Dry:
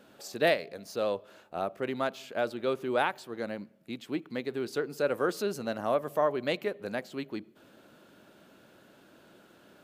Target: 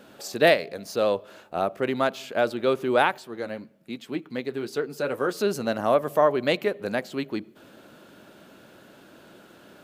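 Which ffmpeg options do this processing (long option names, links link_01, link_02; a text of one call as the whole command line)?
ffmpeg -i in.wav -filter_complex "[0:a]asettb=1/sr,asplit=3[link_01][link_02][link_03];[link_01]atrim=end=3.184[link_04];[link_02]atrim=start=3.18:end=5.41,asetpts=PTS-STARTPTS,afade=type=in:duration=0.004:curve=qsin,afade=type=out:start_time=2.226:duration=0.004:curve=qsin,flanger=delay=4.4:depth=3.3:regen=-53:speed=1.2:shape=sinusoidal[link_05];[link_03]atrim=start=5.406[link_06];[link_04][link_05]acrossfade=duration=0.004:curve1=hsin:curve2=qsin[link_07];[link_07][link_06]acrossfade=duration=0.004:curve1=qsin:curve2=hsin,volume=7dB" out.wav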